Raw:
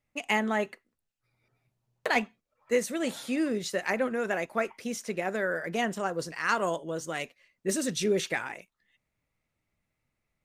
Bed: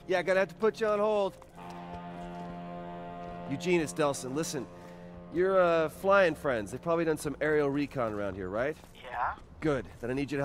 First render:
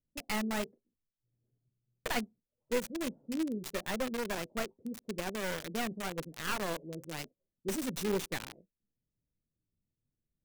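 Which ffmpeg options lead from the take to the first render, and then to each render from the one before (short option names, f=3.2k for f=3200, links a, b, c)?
-filter_complex "[0:a]flanger=delay=3.7:depth=5.7:regen=-72:speed=0.96:shape=triangular,acrossover=split=460[a][b];[b]acrusher=bits=3:dc=4:mix=0:aa=0.000001[c];[a][c]amix=inputs=2:normalize=0"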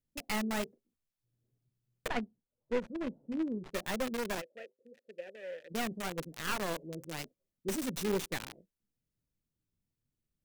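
-filter_complex "[0:a]asettb=1/sr,asplit=3[a][b][c];[a]atrim=end=2.084[d];[b]atrim=start=2.08:end=3.73,asetpts=PTS-STARTPTS,afade=t=in:d=0.004:c=qsin,afade=t=out:st=1.646:d=0.004:c=qsin,adynamicsmooth=sensitivity=2:basefreq=1.5k[e];[c]atrim=start=3.726[f];[d][e]acrossfade=d=0.004:c1=hsin:c2=qsin[g];[g][f]acrossfade=d=0.004:c1=qsin:c2=hsin,asplit=3[h][i][j];[h]afade=t=out:st=4.4:d=0.02[k];[i]asplit=3[l][m][n];[l]bandpass=f=530:t=q:w=8,volume=0dB[o];[m]bandpass=f=1.84k:t=q:w=8,volume=-6dB[p];[n]bandpass=f=2.48k:t=q:w=8,volume=-9dB[q];[o][p][q]amix=inputs=3:normalize=0,afade=t=in:st=4.4:d=0.02,afade=t=out:st=5.7:d=0.02[r];[j]afade=t=in:st=5.7:d=0.02[s];[k][r][s]amix=inputs=3:normalize=0"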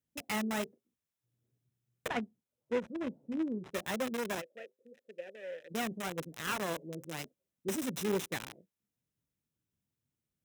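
-af "highpass=79,bandreject=f=4.5k:w=6.9"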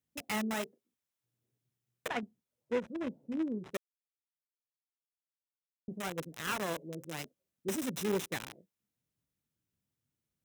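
-filter_complex "[0:a]asettb=1/sr,asplit=3[a][b][c];[a]atrim=end=0.544[d];[b]atrim=start=0.54:end=2.23,asetpts=PTS-STARTPTS,afade=t=in:d=0.004:c=qsin,afade=t=out:st=1.686:d=0.004:c=qsin,lowshelf=f=200:g=-7.5[e];[c]atrim=start=2.226[f];[d][e]acrossfade=d=0.004:c1=hsin:c2=qsin[g];[g][f]acrossfade=d=0.004:c1=qsin:c2=hsin,asplit=3[h][i][j];[h]atrim=end=3.77,asetpts=PTS-STARTPTS,afade=t=out:st=3.766:d=0.004:c=hsin[k];[i]atrim=start=3.77:end=5.88,asetpts=PTS-STARTPTS,volume=0[l];[j]atrim=start=5.88,asetpts=PTS-STARTPTS,afade=t=in:d=0.004:c=hsin[m];[k][l][m]concat=n=3:v=0:a=1"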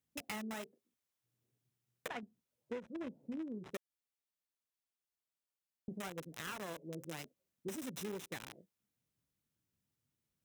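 -af "acompressor=threshold=-40dB:ratio=6"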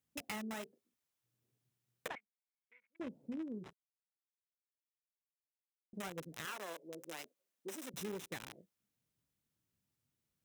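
-filter_complex "[0:a]asettb=1/sr,asplit=3[a][b][c];[a]atrim=end=2.154[d];[b]atrim=start=2.15:end=3,asetpts=PTS-STARTPTS,afade=t=in:d=0.004:c=qsin,afade=t=out:st=0.846:d=0.004:c=qsin,bandpass=f=2.2k:t=q:w=17[e];[c]atrim=start=2.996[f];[d][e]acrossfade=d=0.004:c1=hsin:c2=qsin[g];[g][f]acrossfade=d=0.004:c1=qsin:c2=hsin,asettb=1/sr,asplit=3[h][i][j];[h]atrim=end=6.454[k];[i]atrim=start=6.45:end=7.94,asetpts=PTS-STARTPTS,afade=t=in:d=0.004:c=qsin,afade=t=out:st=1.486:d=0.004:c=qsin,highpass=370[l];[j]atrim=start=7.936[m];[k][l]acrossfade=d=0.004:c1=hsin:c2=qsin[n];[n][m]acrossfade=d=0.004:c1=qsin:c2=hsin,asplit=3[o][p][q];[o]atrim=end=3.73,asetpts=PTS-STARTPTS,afade=t=out:st=3.726:d=0.004:c=hsin[r];[p]atrim=start=3.73:end=5.93,asetpts=PTS-STARTPTS,volume=0[s];[q]atrim=start=5.93,asetpts=PTS-STARTPTS,afade=t=in:d=0.004:c=hsin[t];[r][s][t]concat=n=3:v=0:a=1"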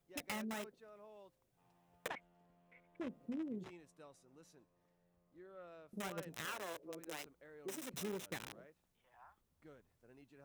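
-filter_complex "[1:a]volume=-30.5dB[a];[0:a][a]amix=inputs=2:normalize=0"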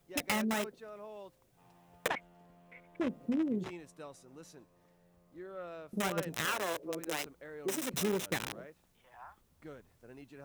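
-af "volume=10.5dB"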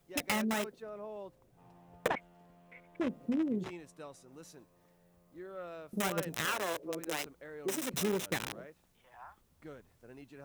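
-filter_complex "[0:a]asettb=1/sr,asplit=3[a][b][c];[a]atrim=end=0.824[d];[b]atrim=start=0.82:end=2.17,asetpts=PTS-STARTPTS,afade=t=in:d=0.004:c=qsin,afade=t=out:st=1.346:d=0.004:c=qsin,tiltshelf=f=1.4k:g=5[e];[c]atrim=start=2.166[f];[d][e]acrossfade=d=0.004:c1=hsin:c2=qsin[g];[g][f]acrossfade=d=0.004:c1=qsin:c2=hsin,asettb=1/sr,asplit=3[h][i][j];[h]atrim=end=4.324[k];[i]atrim=start=4.32:end=6.35,asetpts=PTS-STARTPTS,afade=t=in:d=0.004:c=qsin,afade=t=out:st=2.026:d=0.004:c=qsin,highshelf=f=8.6k:g=5[l];[j]atrim=start=6.346[m];[k][l]acrossfade=d=0.004:c1=hsin:c2=qsin[n];[n][m]acrossfade=d=0.004:c1=qsin:c2=hsin"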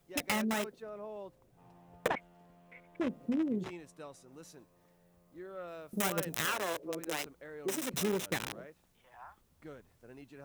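-filter_complex "[0:a]asettb=1/sr,asplit=3[a][b][c];[a]atrim=end=5.684[d];[b]atrim=start=5.68:end=6.48,asetpts=PTS-STARTPTS,afade=t=in:d=0.004:c=qsin,afade=t=out:st=0.796:d=0.004:c=qsin,highshelf=f=7.6k:g=6[e];[c]atrim=start=6.476[f];[d][e]acrossfade=d=0.004:c1=hsin:c2=qsin[g];[g][f]acrossfade=d=0.004:c1=qsin:c2=hsin"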